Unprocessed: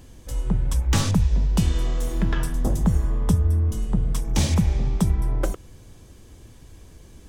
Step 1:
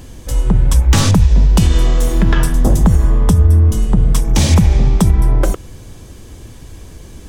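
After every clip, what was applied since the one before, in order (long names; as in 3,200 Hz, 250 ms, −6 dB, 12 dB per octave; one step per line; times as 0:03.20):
boost into a limiter +12.5 dB
level −1 dB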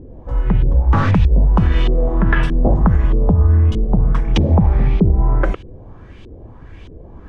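auto-filter low-pass saw up 1.6 Hz 370–3,300 Hz
level −3 dB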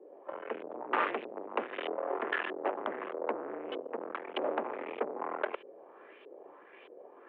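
tube saturation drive 19 dB, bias 0.75
single-sideband voice off tune +51 Hz 340–2,900 Hz
amplitude modulation by smooth noise, depth 60%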